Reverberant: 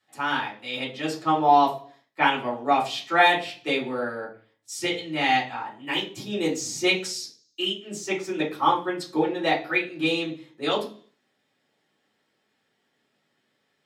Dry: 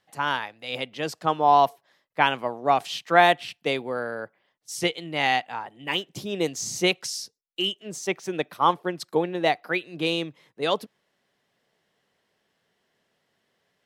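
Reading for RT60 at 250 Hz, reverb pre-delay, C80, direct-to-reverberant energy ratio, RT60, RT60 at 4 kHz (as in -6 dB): 0.55 s, 3 ms, 15.0 dB, -6.0 dB, 0.40 s, 0.50 s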